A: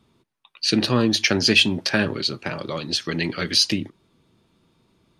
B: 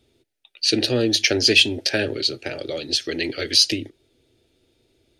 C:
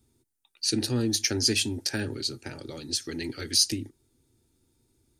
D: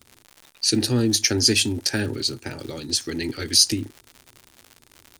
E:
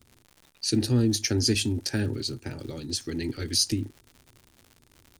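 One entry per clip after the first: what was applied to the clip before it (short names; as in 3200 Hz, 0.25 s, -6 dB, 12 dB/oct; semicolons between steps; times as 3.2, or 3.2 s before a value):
fixed phaser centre 440 Hz, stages 4; gain +3 dB
EQ curve 230 Hz 0 dB, 630 Hz -16 dB, 920 Hz 0 dB, 3000 Hz -15 dB, 8100 Hz +5 dB; gain -1.5 dB
crackle 150/s -38 dBFS; gain +6 dB
low shelf 320 Hz +9.5 dB; gain -8 dB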